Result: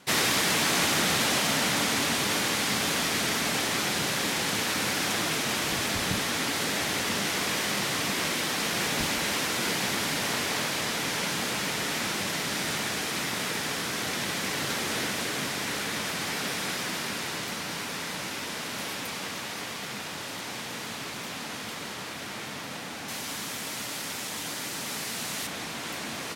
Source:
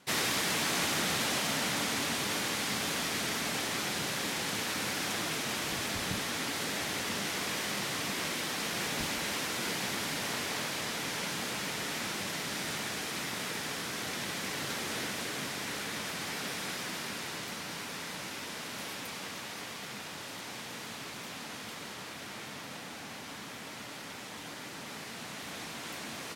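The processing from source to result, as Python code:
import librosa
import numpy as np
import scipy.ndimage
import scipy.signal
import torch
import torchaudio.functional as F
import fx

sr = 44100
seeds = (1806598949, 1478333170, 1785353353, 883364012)

y = fx.high_shelf(x, sr, hz=4800.0, db=10.5, at=(23.08, 25.47))
y = F.gain(torch.from_numpy(y), 6.0).numpy()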